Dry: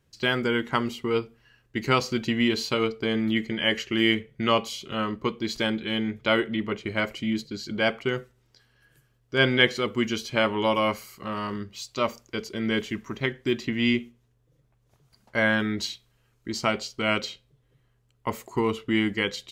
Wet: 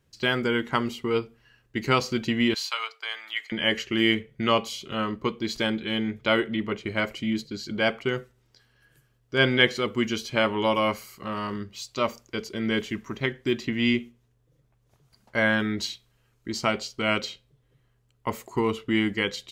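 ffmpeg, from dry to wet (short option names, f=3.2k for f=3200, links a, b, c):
-filter_complex "[0:a]asettb=1/sr,asplit=3[a][b][c];[a]atrim=end=2.544[d];[b]atrim=start=2.54:end=3.52,asetpts=PTS-STARTPTS,afade=t=in:d=0.004:c=qsin,afade=t=out:st=0.976:d=0.004:c=qsin,highpass=f=870:w=0.5412,highpass=f=870:w=1.3066[e];[c]atrim=start=3.516[f];[d][e]acrossfade=d=0.004:c1=hsin:c2=qsin[g];[g][f]acrossfade=d=0.004:c1=qsin:c2=hsin"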